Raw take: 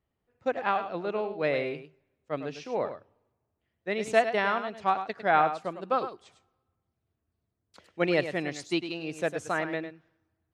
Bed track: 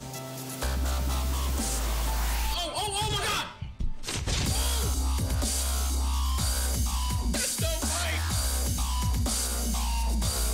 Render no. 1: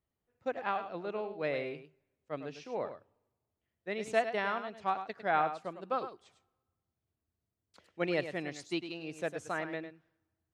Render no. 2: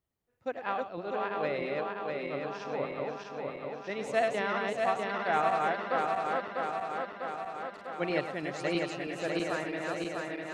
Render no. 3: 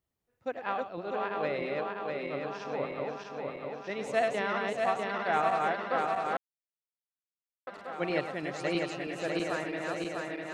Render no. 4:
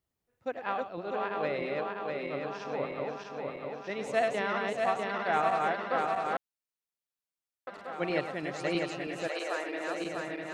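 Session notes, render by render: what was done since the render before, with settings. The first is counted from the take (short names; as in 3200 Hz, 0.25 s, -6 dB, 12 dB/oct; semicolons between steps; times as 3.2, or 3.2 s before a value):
gain -6.5 dB
regenerating reverse delay 0.324 s, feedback 81%, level -2 dB
6.37–7.67 mute
9.27–10.04 HPF 530 Hz -> 200 Hz 24 dB/oct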